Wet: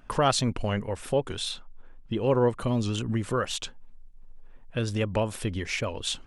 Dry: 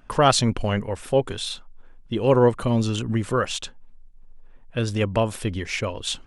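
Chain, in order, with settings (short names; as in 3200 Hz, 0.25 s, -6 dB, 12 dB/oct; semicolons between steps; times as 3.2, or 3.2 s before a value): 1.51–2.49 high shelf 5500 Hz -7.5 dB; in parallel at +2.5 dB: compressor, threshold -28 dBFS, peak gain reduction 15.5 dB; on the sum: record warp 78 rpm, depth 100 cents; gain -8 dB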